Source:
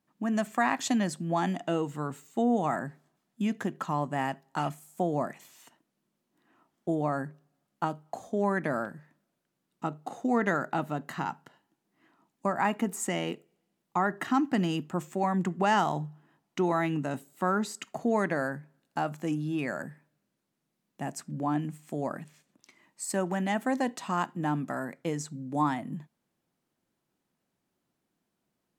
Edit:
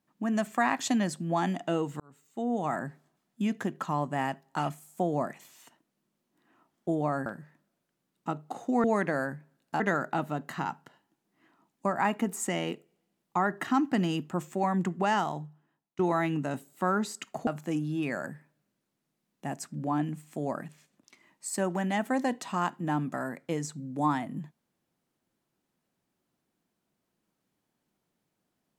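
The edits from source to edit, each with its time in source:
2–2.85 fade in
7.26–8.82 cut
15.44–16.59 fade out, to -20.5 dB
18.07–19.03 move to 10.4

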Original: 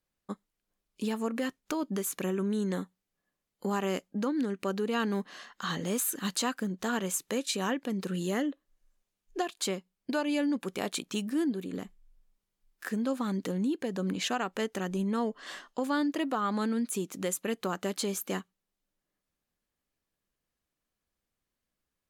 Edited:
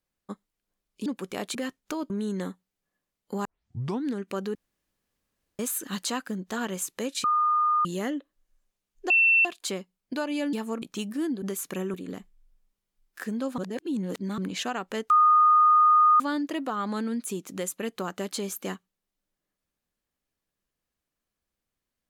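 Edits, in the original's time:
1.06–1.35 swap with 10.5–10.99
1.9–2.42 move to 11.59
3.77 tape start 0.60 s
4.87–5.91 room tone
7.56–8.17 bleep 1220 Hz -20 dBFS
9.42 add tone 2690 Hz -16.5 dBFS 0.35 s
13.23–14.03 reverse
14.75–15.85 bleep 1230 Hz -15 dBFS

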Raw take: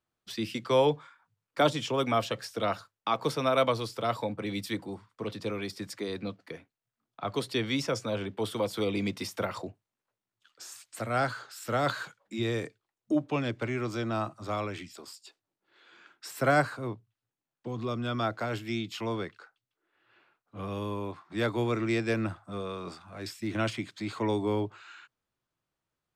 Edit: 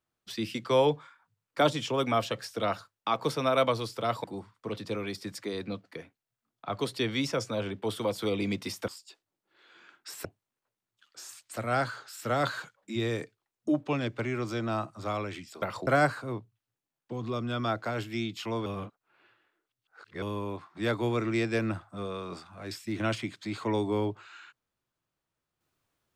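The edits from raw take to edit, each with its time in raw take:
4.24–4.79 cut
9.43–9.68 swap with 15.05–16.42
19.21–20.77 reverse

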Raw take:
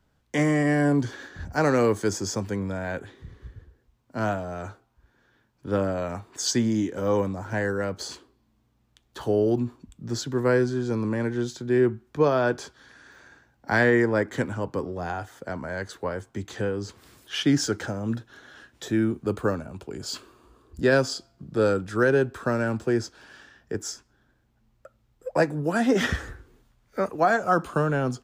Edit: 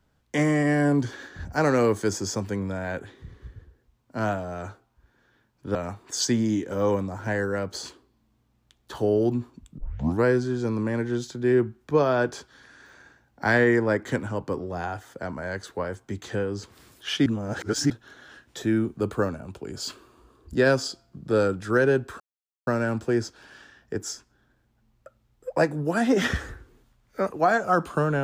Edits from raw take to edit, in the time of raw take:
5.75–6.01 cut
10.04 tape start 0.46 s
17.52–18.16 reverse
22.46 insert silence 0.47 s

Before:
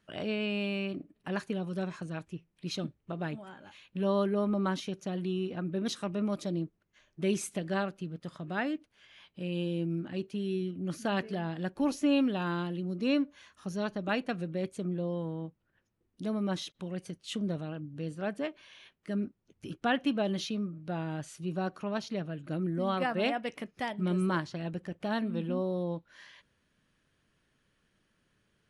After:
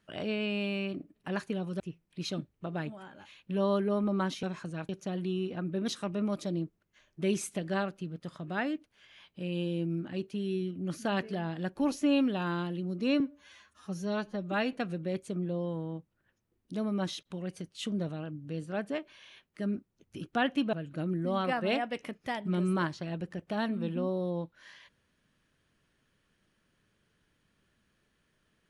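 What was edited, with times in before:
1.8–2.26 move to 4.89
13.2–14.22 stretch 1.5×
20.22–22.26 cut

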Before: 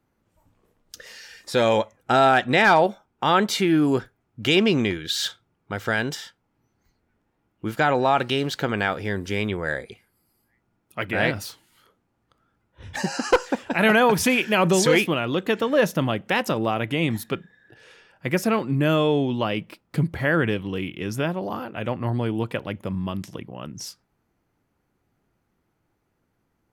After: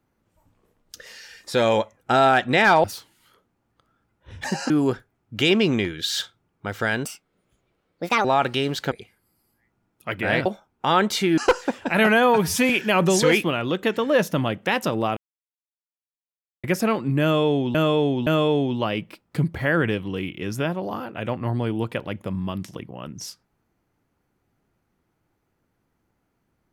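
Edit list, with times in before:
2.84–3.76 swap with 11.36–13.22
6.11–8 speed 158%
8.67–9.82 cut
13.91–14.33 stretch 1.5×
16.8–18.27 mute
18.86–19.38 loop, 3 plays

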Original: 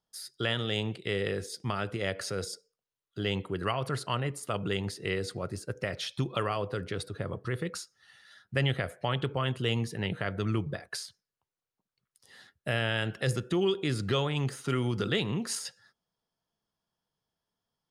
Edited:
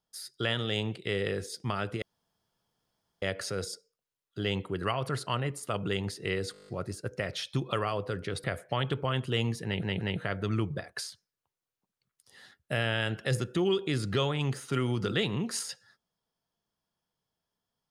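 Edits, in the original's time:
2.02 insert room tone 1.20 s
5.32 stutter 0.02 s, 9 plays
7.08–8.76 cut
9.97 stutter 0.18 s, 3 plays

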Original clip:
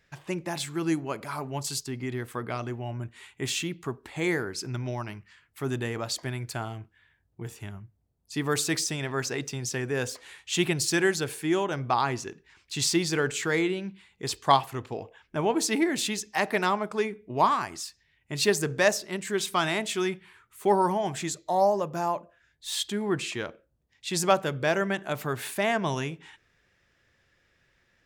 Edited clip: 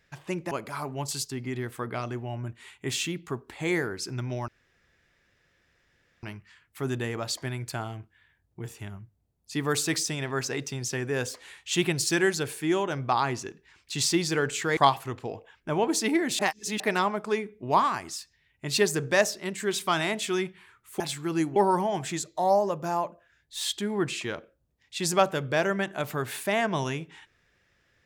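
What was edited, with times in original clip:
0.51–1.07 move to 20.67
5.04 insert room tone 1.75 s
13.58–14.44 cut
16.06–16.47 reverse

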